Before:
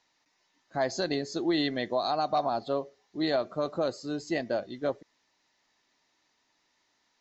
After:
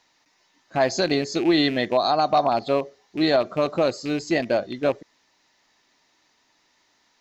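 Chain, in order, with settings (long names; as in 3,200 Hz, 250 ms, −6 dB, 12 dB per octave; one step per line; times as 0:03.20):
loose part that buzzes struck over −38 dBFS, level −34 dBFS
level +8 dB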